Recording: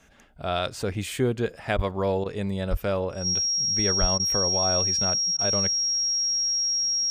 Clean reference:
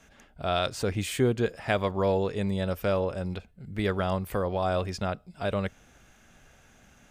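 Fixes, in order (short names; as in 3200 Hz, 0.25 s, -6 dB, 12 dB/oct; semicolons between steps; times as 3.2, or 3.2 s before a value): notch 5600 Hz, Q 30; 1.75–1.87 HPF 140 Hz 24 dB/oct; 2.7–2.82 HPF 140 Hz 24 dB/oct; 4–4.12 HPF 140 Hz 24 dB/oct; interpolate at 1.77/2.24/4.18/5.37, 16 ms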